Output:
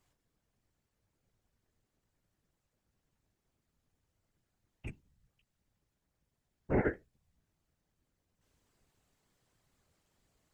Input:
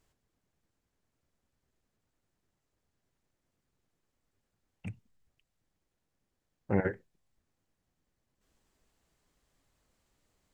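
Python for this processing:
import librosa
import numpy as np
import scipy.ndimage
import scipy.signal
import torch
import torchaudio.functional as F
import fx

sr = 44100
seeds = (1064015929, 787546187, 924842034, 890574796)

y = fx.doubler(x, sr, ms=13.0, db=-6)
y = fx.whisperise(y, sr, seeds[0])
y = y * librosa.db_to_amplitude(-1.5)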